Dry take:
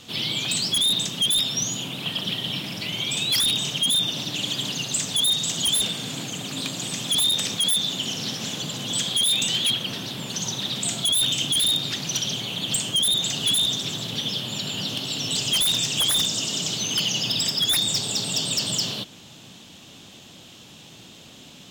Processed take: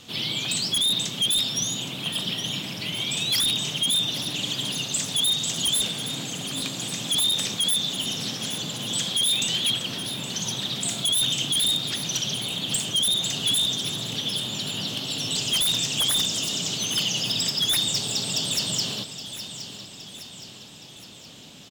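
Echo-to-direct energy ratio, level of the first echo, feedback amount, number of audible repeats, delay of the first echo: -10.5 dB, -12.0 dB, 52%, 5, 818 ms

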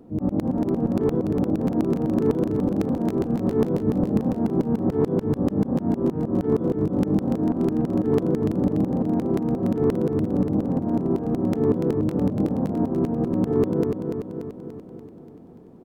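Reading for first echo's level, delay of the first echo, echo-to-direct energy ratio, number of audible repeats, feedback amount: -6.0 dB, 290 ms, -4.0 dB, 7, 58%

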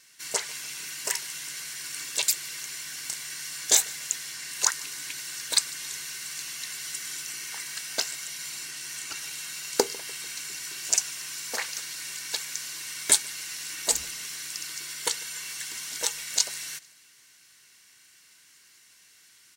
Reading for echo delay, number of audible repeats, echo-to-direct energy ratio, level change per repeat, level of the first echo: 148 ms, 2, -22.5 dB, -6.0 dB, -23.5 dB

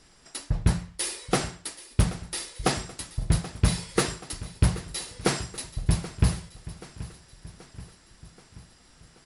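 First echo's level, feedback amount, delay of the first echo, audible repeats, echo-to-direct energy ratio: -16.5 dB, 57%, 780 ms, 4, -15.0 dB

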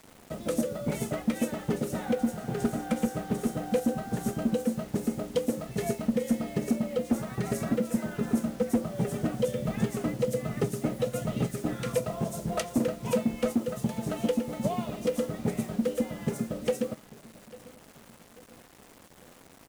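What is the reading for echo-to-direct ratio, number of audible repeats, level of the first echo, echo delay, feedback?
-20.0 dB, 2, -21.0 dB, 845 ms, 43%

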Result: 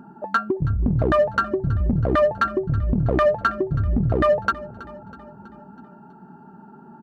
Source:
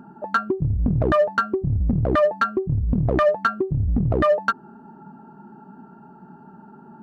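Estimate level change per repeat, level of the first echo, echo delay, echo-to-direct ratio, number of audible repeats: -5.0 dB, -19.0 dB, 324 ms, -17.5 dB, 4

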